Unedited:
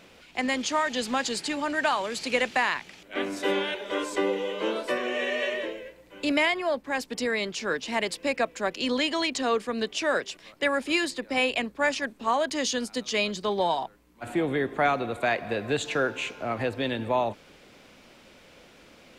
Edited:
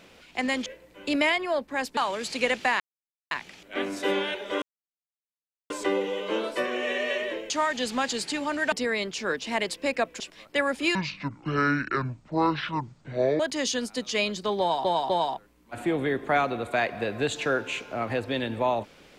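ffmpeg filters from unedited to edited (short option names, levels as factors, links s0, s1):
-filter_complex "[0:a]asplit=12[s0][s1][s2][s3][s4][s5][s6][s7][s8][s9][s10][s11];[s0]atrim=end=0.662[s12];[s1]atrim=start=5.818:end=7.132[s13];[s2]atrim=start=1.878:end=2.71,asetpts=PTS-STARTPTS,afade=t=out:st=0.828:d=0.004:c=hsin,apad=pad_dur=0.51[s14];[s3]atrim=start=2.71:end=4.02,asetpts=PTS-STARTPTS,afade=t=in:d=0.004:c=hsin,afade=t=out:st=1.306:d=0.004:c=hsin,apad=pad_dur=1.08[s15];[s4]atrim=start=4.02:end=5.822,asetpts=PTS-STARTPTS,afade=t=in:d=0.004:c=hsin[s16];[s5]atrim=start=0.658:end=1.882[s17];[s6]atrim=start=7.128:end=8.612[s18];[s7]atrim=start=10.268:end=11.024[s19];[s8]atrim=start=11.02:end=12.39,asetpts=PTS-STARTPTS,asetrate=24696,aresample=44100,atrim=end_sample=107887,asetpts=PTS-STARTPTS[s20];[s9]atrim=start=12.386:end=13.842[s21];[s10]atrim=start=13.588:end=13.842[s22];[s11]atrim=start=13.588[s23];[s12][s13]acrossfade=d=0.004:c1=hsin:c2=hsin[s24];[s14][s15][s16]concat=n=3:v=0:a=1[s25];[s24][s25]acrossfade=d=0.004:c1=hsin:c2=hsin[s26];[s26][s17]acrossfade=d=0.004:c1=hsin:c2=hsin[s27];[s27][s18]acrossfade=d=0.004:c1=hsin:c2=hsin[s28];[s28][s19]acrossfade=d=0.004:c1=hsin:c2=hsin[s29];[s29][s20]acrossfade=d=0.004:c1=hsin:c2=hsin[s30];[s30][s21]acrossfade=d=0.004:c1=hsin:c2=hsin[s31];[s31][s22]acrossfade=d=0.004:c1=hsin:c2=hsin[s32];[s32][s23]acrossfade=d=0.004:c1=hsin:c2=hsin"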